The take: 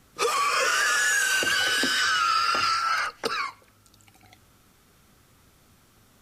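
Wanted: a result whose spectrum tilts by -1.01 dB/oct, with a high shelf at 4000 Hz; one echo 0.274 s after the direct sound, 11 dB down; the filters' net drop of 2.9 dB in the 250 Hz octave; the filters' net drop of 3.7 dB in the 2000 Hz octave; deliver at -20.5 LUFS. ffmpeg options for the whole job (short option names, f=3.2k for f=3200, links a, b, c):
-af "equalizer=f=250:t=o:g=-3.5,equalizer=f=2k:t=o:g=-6,highshelf=f=4k:g=3,aecho=1:1:274:0.282,volume=3.5dB"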